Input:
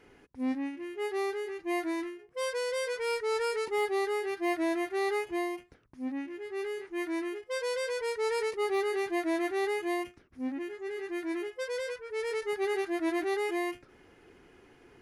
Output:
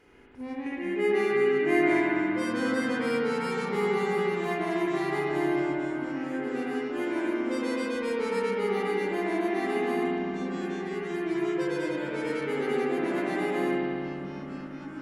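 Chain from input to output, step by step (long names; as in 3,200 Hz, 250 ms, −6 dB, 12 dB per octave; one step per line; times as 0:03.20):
0:00.66–0:02.00: octave-band graphic EQ 500/2,000/8,000 Hz +11/+10/+5 dB
in parallel at −1.5 dB: downward compressor, threshold −38 dBFS, peak gain reduction 16 dB
on the sum: spring reverb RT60 2.4 s, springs 60 ms, chirp 75 ms, DRR −4.5 dB
delay with pitch and tempo change per echo 317 ms, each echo −5 semitones, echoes 3, each echo −6 dB
level −6.5 dB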